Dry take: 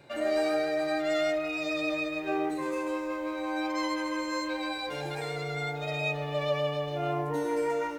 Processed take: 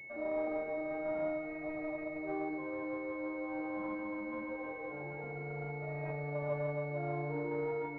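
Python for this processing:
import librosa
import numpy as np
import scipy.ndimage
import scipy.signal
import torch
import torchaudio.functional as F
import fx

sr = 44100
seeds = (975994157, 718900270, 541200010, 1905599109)

p1 = x + fx.echo_split(x, sr, split_hz=700.0, low_ms=316, high_ms=85, feedback_pct=52, wet_db=-8.5, dry=0)
p2 = fx.pwm(p1, sr, carrier_hz=2200.0)
y = p2 * librosa.db_to_amplitude(-8.0)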